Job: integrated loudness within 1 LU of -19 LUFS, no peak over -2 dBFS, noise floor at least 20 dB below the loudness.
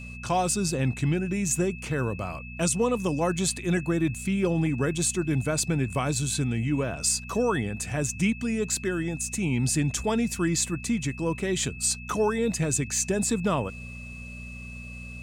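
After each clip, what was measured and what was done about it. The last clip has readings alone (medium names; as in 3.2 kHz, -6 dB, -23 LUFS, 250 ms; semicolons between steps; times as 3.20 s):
hum 60 Hz; highest harmonic 240 Hz; hum level -39 dBFS; steady tone 2.6 kHz; tone level -42 dBFS; loudness -26.5 LUFS; peak level -13.0 dBFS; loudness target -19.0 LUFS
-> de-hum 60 Hz, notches 4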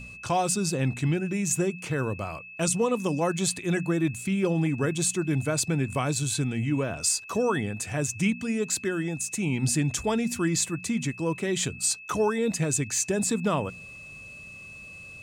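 hum not found; steady tone 2.6 kHz; tone level -42 dBFS
-> band-stop 2.6 kHz, Q 30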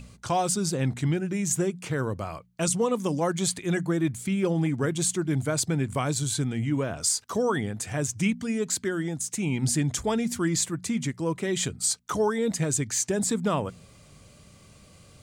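steady tone not found; loudness -27.0 LUFS; peak level -13.0 dBFS; loudness target -19.0 LUFS
-> trim +8 dB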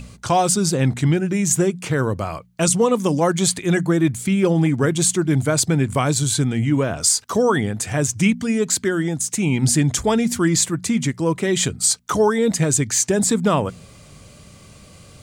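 loudness -19.0 LUFS; peak level -5.0 dBFS; noise floor -45 dBFS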